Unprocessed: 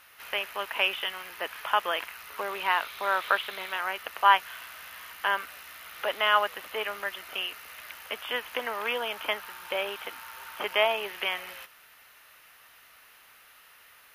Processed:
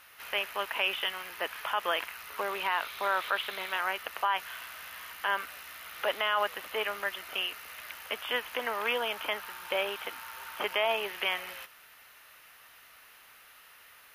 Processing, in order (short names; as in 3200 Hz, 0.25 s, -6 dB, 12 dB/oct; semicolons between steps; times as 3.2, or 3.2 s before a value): limiter -17 dBFS, peak gain reduction 11 dB